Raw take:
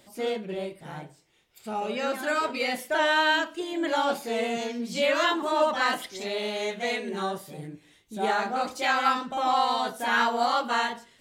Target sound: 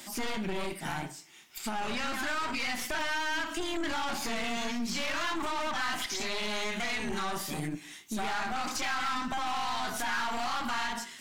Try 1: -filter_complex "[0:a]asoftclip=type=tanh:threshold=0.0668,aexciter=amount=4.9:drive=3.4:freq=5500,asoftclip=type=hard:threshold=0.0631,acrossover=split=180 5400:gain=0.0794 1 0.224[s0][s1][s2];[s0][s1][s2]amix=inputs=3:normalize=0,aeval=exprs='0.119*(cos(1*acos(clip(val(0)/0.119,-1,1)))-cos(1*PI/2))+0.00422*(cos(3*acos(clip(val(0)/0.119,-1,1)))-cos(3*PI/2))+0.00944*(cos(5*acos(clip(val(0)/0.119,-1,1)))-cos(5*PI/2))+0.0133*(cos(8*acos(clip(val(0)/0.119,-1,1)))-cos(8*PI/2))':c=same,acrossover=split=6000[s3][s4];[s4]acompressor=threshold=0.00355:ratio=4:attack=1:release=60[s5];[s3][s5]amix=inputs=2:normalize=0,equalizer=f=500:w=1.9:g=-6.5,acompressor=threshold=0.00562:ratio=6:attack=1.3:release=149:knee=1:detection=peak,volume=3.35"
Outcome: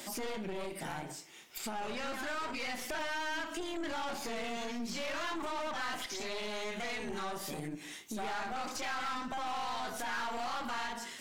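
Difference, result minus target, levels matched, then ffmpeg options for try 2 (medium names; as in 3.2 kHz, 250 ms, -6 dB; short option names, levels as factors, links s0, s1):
compression: peak gain reduction +6 dB; 500 Hz band +3.5 dB
-filter_complex "[0:a]asoftclip=type=tanh:threshold=0.0668,aexciter=amount=4.9:drive=3.4:freq=5500,asoftclip=type=hard:threshold=0.0631,acrossover=split=180 5400:gain=0.0794 1 0.224[s0][s1][s2];[s0][s1][s2]amix=inputs=3:normalize=0,aeval=exprs='0.119*(cos(1*acos(clip(val(0)/0.119,-1,1)))-cos(1*PI/2))+0.00422*(cos(3*acos(clip(val(0)/0.119,-1,1)))-cos(3*PI/2))+0.00944*(cos(5*acos(clip(val(0)/0.119,-1,1)))-cos(5*PI/2))+0.0133*(cos(8*acos(clip(val(0)/0.119,-1,1)))-cos(8*PI/2))':c=same,acrossover=split=6000[s3][s4];[s4]acompressor=threshold=0.00355:ratio=4:attack=1:release=60[s5];[s3][s5]amix=inputs=2:normalize=0,equalizer=f=500:w=1.9:g=-16,acompressor=threshold=0.0126:ratio=6:attack=1.3:release=149:knee=1:detection=peak,volume=3.35"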